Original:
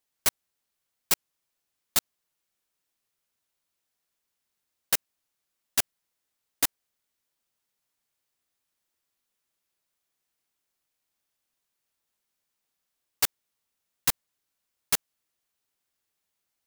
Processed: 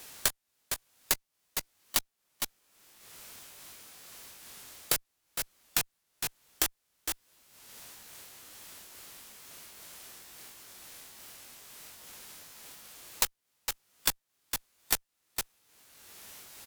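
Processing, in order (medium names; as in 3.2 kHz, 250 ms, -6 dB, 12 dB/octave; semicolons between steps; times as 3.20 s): sawtooth pitch modulation +1.5 st, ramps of 756 ms; one-sided clip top -27 dBFS; formant shift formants -3 st; on a send: delay 458 ms -15 dB; on the sum: three bands compressed up and down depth 100%; trim +3.5 dB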